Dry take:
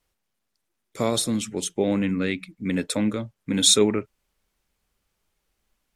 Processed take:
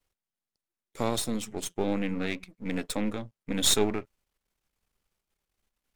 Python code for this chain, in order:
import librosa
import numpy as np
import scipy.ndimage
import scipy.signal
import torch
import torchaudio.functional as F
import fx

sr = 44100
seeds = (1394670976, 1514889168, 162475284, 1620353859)

y = np.where(x < 0.0, 10.0 ** (-12.0 / 20.0) * x, x)
y = y * 10.0 ** (-3.0 / 20.0)